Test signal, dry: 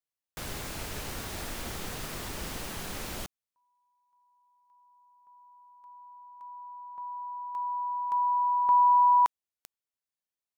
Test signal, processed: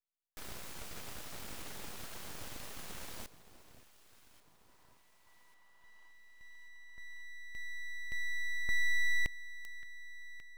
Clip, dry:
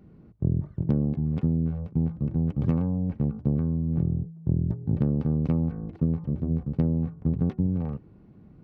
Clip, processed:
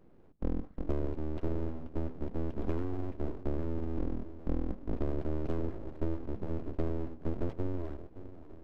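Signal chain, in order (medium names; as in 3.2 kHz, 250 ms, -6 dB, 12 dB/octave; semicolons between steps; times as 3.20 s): echo whose repeats swap between lows and highs 570 ms, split 930 Hz, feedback 67%, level -13.5 dB; full-wave rectifier; trim -6.5 dB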